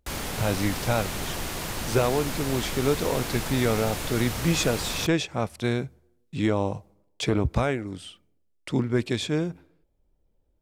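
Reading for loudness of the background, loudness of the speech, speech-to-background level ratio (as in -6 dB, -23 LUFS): -31.5 LUFS, -27.0 LUFS, 4.5 dB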